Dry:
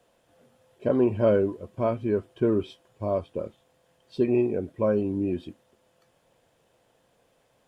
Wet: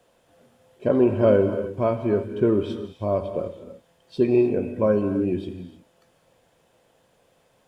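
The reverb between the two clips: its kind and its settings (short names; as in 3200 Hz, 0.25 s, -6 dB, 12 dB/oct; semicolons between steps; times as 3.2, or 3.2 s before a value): non-linear reverb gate 0.34 s flat, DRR 7.5 dB; gain +3 dB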